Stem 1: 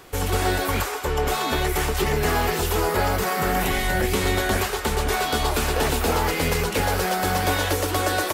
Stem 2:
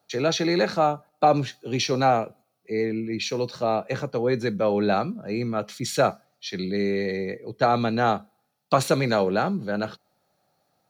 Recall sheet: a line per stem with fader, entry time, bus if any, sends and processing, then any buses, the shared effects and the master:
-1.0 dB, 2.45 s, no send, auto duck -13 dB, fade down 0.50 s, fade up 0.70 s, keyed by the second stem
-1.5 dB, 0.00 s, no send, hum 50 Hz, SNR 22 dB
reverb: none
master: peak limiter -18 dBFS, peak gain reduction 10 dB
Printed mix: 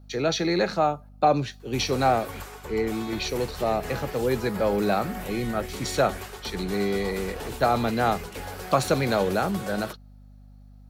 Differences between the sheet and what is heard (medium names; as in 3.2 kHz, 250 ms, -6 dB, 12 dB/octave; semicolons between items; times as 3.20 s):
stem 1: entry 2.45 s -> 1.60 s; master: missing peak limiter -18 dBFS, peak gain reduction 10 dB